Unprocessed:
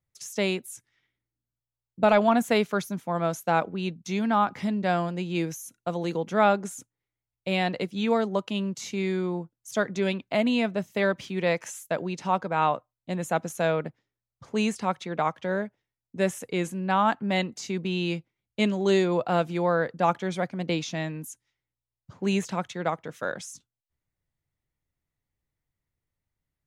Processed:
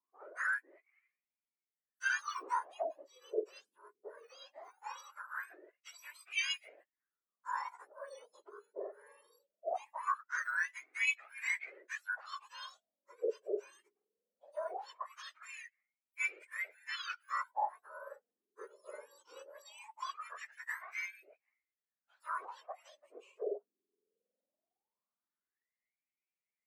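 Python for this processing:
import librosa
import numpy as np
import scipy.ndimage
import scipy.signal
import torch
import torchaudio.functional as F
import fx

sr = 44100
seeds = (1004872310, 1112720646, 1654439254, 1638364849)

y = fx.octave_mirror(x, sr, pivot_hz=2000.0)
y = fx.wah_lfo(y, sr, hz=0.2, low_hz=400.0, high_hz=2400.0, q=11.0)
y = fx.comb_cascade(y, sr, direction='rising', hz=1.3)
y = y * librosa.db_to_amplitude(13.5)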